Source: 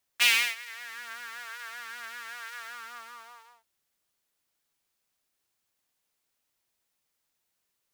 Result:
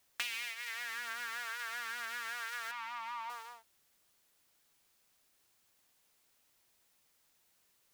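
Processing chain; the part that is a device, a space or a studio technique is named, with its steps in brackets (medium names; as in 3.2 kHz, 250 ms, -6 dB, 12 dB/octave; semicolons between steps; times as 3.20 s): serial compression, peaks first (compression 6:1, threshold -32 dBFS, peak gain reduction 14.5 dB; compression 2.5:1, threshold -47 dBFS, peak gain reduction 12.5 dB); 2.71–3.30 s: FFT filter 190 Hz 0 dB, 490 Hz -23 dB, 910 Hz +9 dB, 1.5 kHz -8 dB, 2.2 kHz +3 dB, 8.9 kHz -13 dB; trim +7 dB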